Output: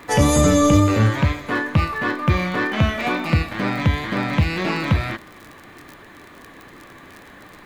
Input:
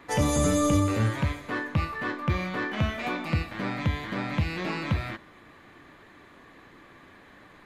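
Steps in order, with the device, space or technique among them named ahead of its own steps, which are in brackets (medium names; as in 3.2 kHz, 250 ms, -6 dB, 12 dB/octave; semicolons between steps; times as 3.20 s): vinyl LP (wow and flutter 24 cents; crackle 36 per s -37 dBFS; white noise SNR 45 dB); 0.41–1.47 s: peaking EQ 9.7 kHz -14.5 dB 0.31 oct; trim +8.5 dB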